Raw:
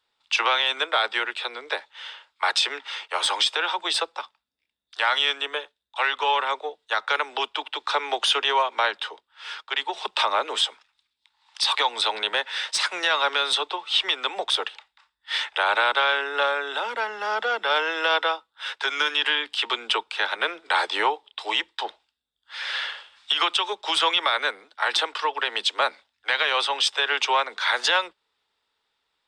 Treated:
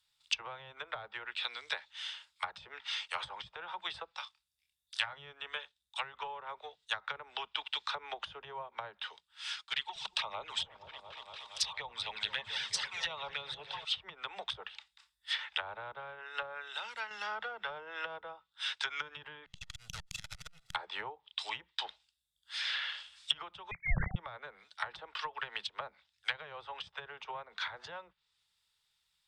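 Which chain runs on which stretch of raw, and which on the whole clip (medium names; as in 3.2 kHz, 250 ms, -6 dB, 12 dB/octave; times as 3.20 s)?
4.12–5.13 s: peaking EQ 300 Hz -14.5 dB 1 oct + doubling 27 ms -8 dB
9.56–13.85 s: touch-sensitive flanger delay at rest 6.7 ms, full sweep at -19 dBFS + delay with an opening low-pass 234 ms, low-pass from 200 Hz, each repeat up 1 oct, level -3 dB
15.97–17.11 s: band-stop 3.4 kHz + upward expansion, over -31 dBFS
19.46–20.75 s: comb filter that takes the minimum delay 1.5 ms + level held to a coarse grid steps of 17 dB + transformer saturation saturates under 930 Hz
23.71–24.16 s: formants replaced by sine waves + frequency inversion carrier 3 kHz
whole clip: low-pass that closes with the level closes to 580 Hz, closed at -19.5 dBFS; FFT filter 170 Hz 0 dB, 270 Hz -24 dB, 10 kHz +6 dB; trim +1 dB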